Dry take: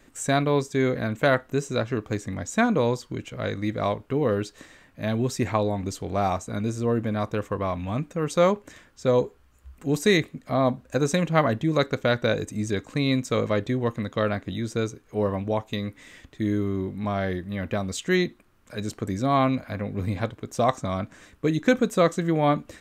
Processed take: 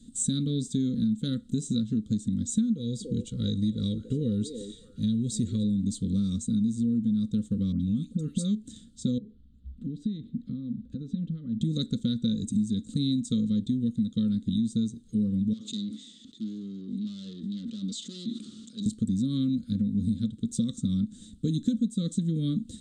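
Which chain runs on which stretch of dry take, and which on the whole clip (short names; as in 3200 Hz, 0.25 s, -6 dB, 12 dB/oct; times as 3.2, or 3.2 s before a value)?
2.72–5.64 comb 2.1 ms, depth 47% + delay with a stepping band-pass 0.287 s, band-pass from 400 Hz, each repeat 1.4 oct, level -8 dB
7.72–8.55 compressor 2.5:1, threshold -25 dBFS + dispersion highs, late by 87 ms, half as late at 1600 Hz
9.18–11.61 compressor 16:1, threshold -33 dBFS + air absorption 350 m
15.53–18.86 tube stage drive 32 dB, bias 0.55 + speaker cabinet 370–6700 Hz, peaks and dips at 500 Hz -6 dB, 1000 Hz +5 dB, 1600 Hz -5 dB + sustainer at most 25 dB/s
whole clip: EQ curve 150 Hz 0 dB, 220 Hz +14 dB, 370 Hz -14 dB, 1100 Hz -11 dB, 1500 Hz -28 dB, 2400 Hz -28 dB, 3600 Hz +3 dB, 5500 Hz -8 dB, 8600 Hz +5 dB, 12000 Hz -19 dB; compressor 6:1, threshold -27 dBFS; elliptic band-stop 490–1400 Hz, stop band 40 dB; gain +3.5 dB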